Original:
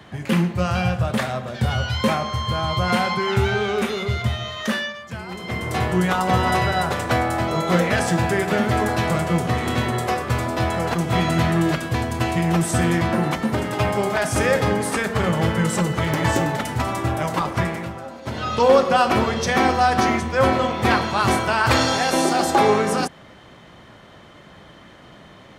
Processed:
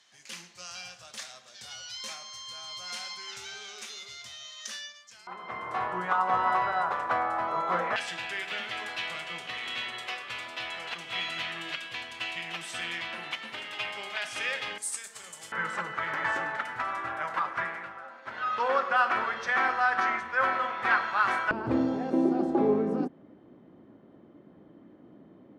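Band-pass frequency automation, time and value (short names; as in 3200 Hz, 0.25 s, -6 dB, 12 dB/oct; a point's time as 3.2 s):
band-pass, Q 2.4
5900 Hz
from 5.27 s 1100 Hz
from 7.96 s 2900 Hz
from 14.78 s 8000 Hz
from 15.52 s 1500 Hz
from 21.51 s 290 Hz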